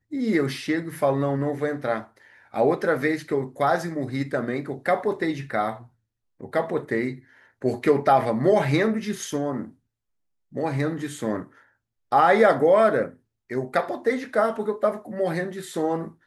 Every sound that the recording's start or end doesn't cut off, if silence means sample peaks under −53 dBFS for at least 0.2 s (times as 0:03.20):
0:06.40–0:09.75
0:10.52–0:11.68
0:12.11–0:13.18